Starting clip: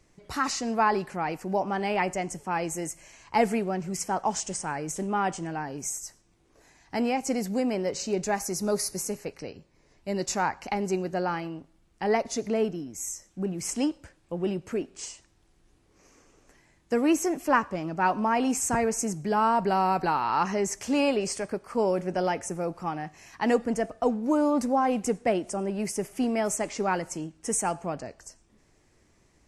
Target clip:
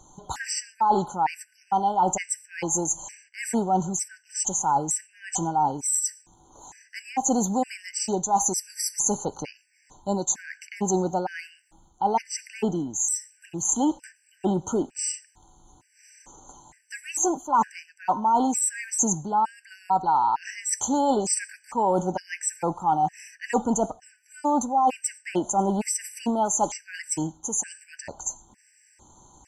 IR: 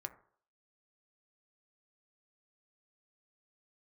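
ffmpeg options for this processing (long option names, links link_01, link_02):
-af "superequalizer=7b=0.708:9b=3.98:15b=3.98,areverse,acompressor=threshold=-26dB:ratio=8,areverse,afftfilt=real='re*gt(sin(2*PI*1.1*pts/sr)*(1-2*mod(floor(b*sr/1024/1500),2)),0)':imag='im*gt(sin(2*PI*1.1*pts/sr)*(1-2*mod(floor(b*sr/1024/1500),2)),0)':win_size=1024:overlap=0.75,volume=7.5dB"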